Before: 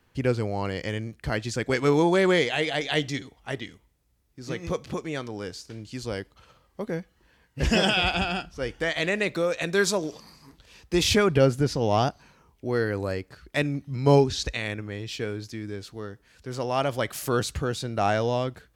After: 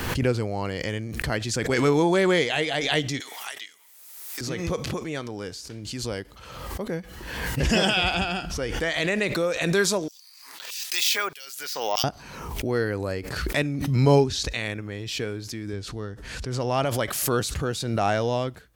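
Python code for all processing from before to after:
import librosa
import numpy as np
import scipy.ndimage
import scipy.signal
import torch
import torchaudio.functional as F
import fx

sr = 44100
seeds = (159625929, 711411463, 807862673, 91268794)

y = fx.chain(x, sr, fx.highpass(hz=1000.0, slope=12),
    fx.high_shelf(hz=5200.0, db=10.0),
    fx.band_squash(depth_pct=100), at=(3.2, 4.41))
y = fx.chain(y, sr, fx.filter_lfo_highpass(shape='saw_down', hz=1.6, low_hz=630.0, high_hz=6400.0, q=0.73),
    fx.resample_bad(factor=2, down='none', up='hold'), at=(10.08, 12.04))
y = fx.chain(y, sr, fx.lowpass(hz=9100.0, slope=12),
    fx.low_shelf(hz=120.0, db=10.0), at=(15.73, 16.85))
y = fx.high_shelf(y, sr, hz=7900.0, db=5.0)
y = fx.pre_swell(y, sr, db_per_s=41.0)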